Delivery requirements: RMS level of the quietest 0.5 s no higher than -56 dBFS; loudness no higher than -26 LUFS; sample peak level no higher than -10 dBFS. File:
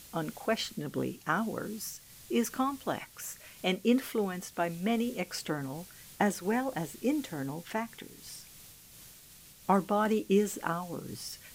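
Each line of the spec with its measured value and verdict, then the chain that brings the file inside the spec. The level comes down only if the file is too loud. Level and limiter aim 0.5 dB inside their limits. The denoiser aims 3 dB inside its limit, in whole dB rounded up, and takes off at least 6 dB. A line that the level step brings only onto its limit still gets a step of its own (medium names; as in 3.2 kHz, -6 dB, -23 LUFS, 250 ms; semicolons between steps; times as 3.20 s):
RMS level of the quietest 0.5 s -54 dBFS: fail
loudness -32.5 LUFS: pass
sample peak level -13.0 dBFS: pass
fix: noise reduction 6 dB, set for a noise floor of -54 dBFS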